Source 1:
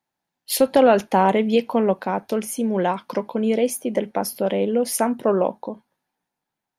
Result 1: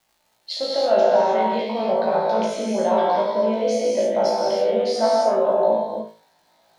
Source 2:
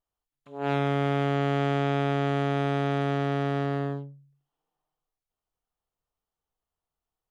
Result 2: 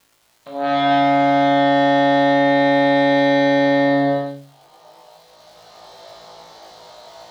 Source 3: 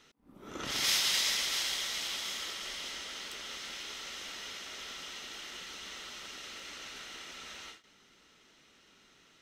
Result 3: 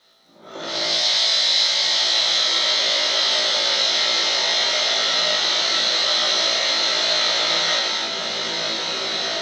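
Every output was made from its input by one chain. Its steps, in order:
camcorder AGC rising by 11 dB per second
parametric band 500 Hz +6 dB 0.88 octaves
reversed playback
downward compressor 5 to 1, threshold −26 dBFS
reversed playback
loudspeaker in its box 210–5,800 Hz, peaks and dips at 260 Hz −10 dB, 430 Hz −9 dB, 640 Hz +7 dB, 1,300 Hz −3 dB, 2,600 Hz −6 dB, 4,100 Hz +9 dB
reverb whose tail is shaped and stops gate 340 ms flat, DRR −4 dB
surface crackle 340 per second −55 dBFS
on a send: flutter between parallel walls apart 3.1 metres, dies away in 0.34 s
on the sum: normalise the peak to −6 dBFS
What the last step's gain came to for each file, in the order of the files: +2.0, +10.5, −0.5 decibels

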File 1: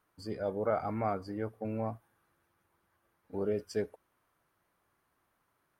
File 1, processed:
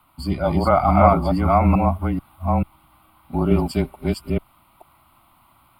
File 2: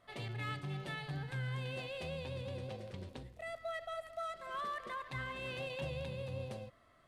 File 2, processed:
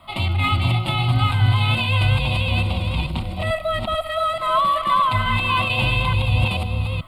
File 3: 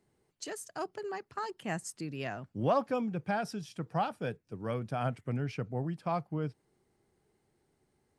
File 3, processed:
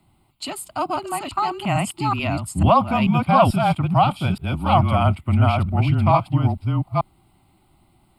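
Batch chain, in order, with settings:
delay that plays each chunk backwards 438 ms, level −1 dB
frequency shifter −26 Hz
phaser with its sweep stopped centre 1,700 Hz, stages 6
loudness normalisation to −20 LKFS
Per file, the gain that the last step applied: +20.0, +22.5, +17.0 decibels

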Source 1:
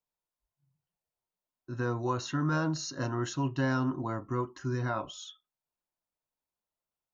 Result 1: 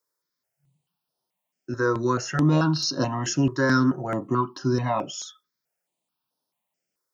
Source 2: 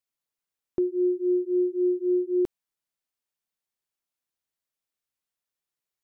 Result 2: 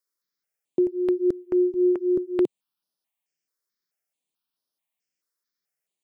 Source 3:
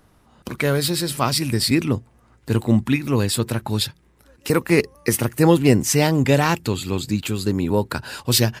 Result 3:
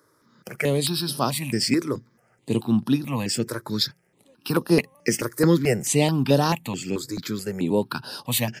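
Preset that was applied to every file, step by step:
high-pass filter 140 Hz 24 dB per octave
parametric band 5,200 Hz +6.5 dB 0.24 octaves
step-sequenced phaser 4.6 Hz 750–7,400 Hz
loudness normalisation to −24 LKFS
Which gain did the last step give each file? +12.0, +4.5, −0.5 decibels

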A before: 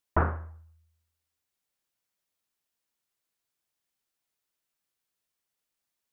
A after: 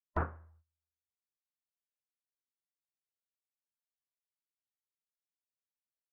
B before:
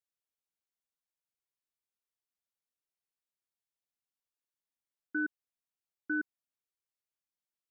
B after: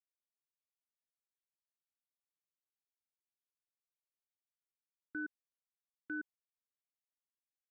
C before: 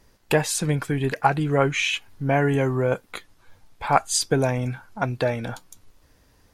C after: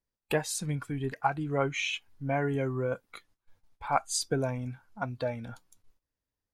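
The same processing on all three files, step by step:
noise gate −50 dBFS, range −16 dB
noise reduction from a noise print of the clip's start 8 dB
level −8 dB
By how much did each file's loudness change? −8.0, −8.0, −8.5 LU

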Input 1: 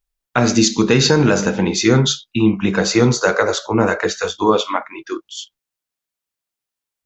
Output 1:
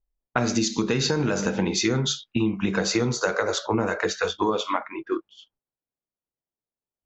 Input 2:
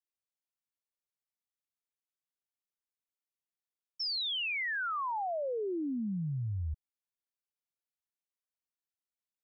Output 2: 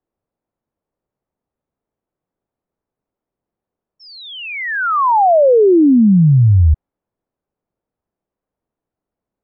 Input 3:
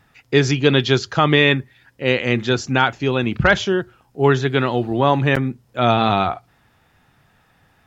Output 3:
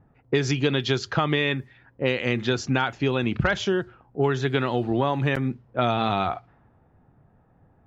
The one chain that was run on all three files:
low-pass that shuts in the quiet parts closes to 630 Hz, open at −13.5 dBFS
downward compressor, threshold −21 dBFS
normalise the peak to −6 dBFS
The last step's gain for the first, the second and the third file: +0.5, +25.0, +1.5 decibels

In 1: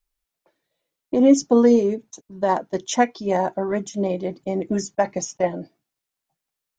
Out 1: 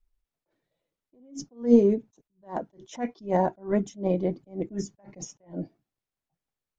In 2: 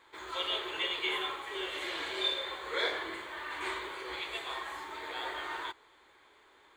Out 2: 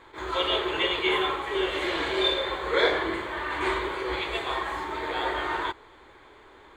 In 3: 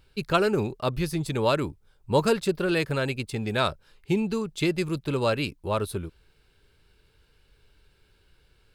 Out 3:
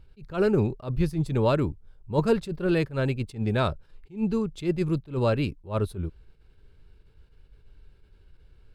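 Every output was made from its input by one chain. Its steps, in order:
spectral tilt −2.5 dB per octave
level that may rise only so fast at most 210 dB per second
loudness normalisation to −27 LKFS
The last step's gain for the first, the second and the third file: −3.5, +10.0, −2.0 decibels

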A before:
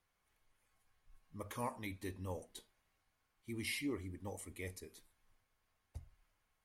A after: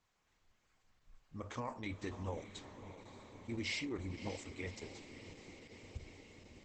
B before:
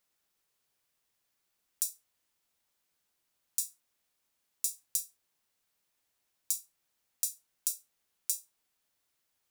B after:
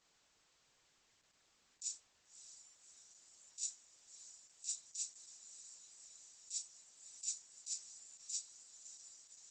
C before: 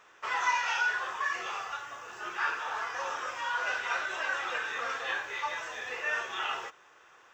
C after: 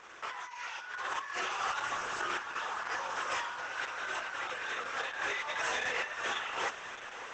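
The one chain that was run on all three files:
compressor whose output falls as the input rises −40 dBFS, ratio −1
feedback delay with all-pass diffusion 591 ms, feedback 75%, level −12 dB
level +2.5 dB
Opus 10 kbit/s 48,000 Hz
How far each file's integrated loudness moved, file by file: −1.0, −11.5, −3.5 LU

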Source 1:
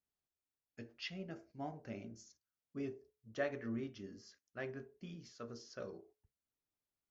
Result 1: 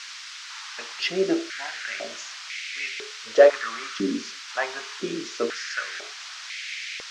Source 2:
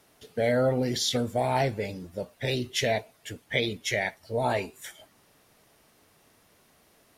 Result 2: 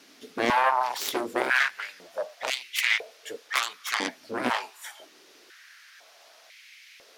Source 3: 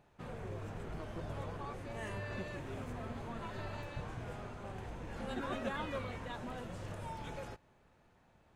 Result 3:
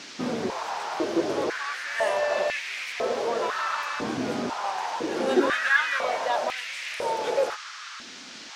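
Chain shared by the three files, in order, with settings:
harmonic generator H 7 −10 dB, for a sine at −11.5 dBFS
noise in a band 1,200–6,100 Hz −56 dBFS
high-pass on a step sequencer 2 Hz 260–2,200 Hz
loudness normalisation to −27 LKFS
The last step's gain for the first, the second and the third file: +16.0, −1.5, +12.5 decibels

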